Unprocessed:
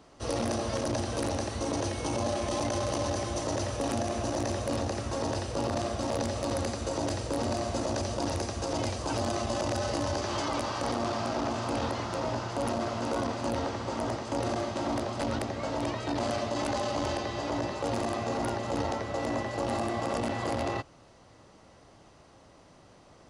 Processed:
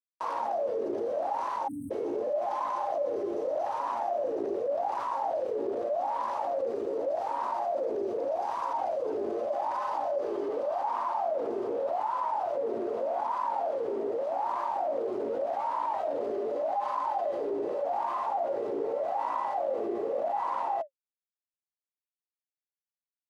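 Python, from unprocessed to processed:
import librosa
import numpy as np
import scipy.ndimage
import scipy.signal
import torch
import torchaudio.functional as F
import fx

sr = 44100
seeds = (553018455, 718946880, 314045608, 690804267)

y = scipy.signal.sosfilt(scipy.signal.butter(2, 99.0, 'highpass', fs=sr, output='sos'), x)
y = fx.low_shelf(y, sr, hz=220.0, db=-9.5)
y = fx.quant_companded(y, sr, bits=2)
y = fx.wah_lfo(y, sr, hz=0.84, low_hz=400.0, high_hz=1000.0, q=16.0)
y = fx.spec_erase(y, sr, start_s=1.68, length_s=0.23, low_hz=310.0, high_hz=8000.0)
y = fx.env_flatten(y, sr, amount_pct=70)
y = y * 10.0 ** (3.5 / 20.0)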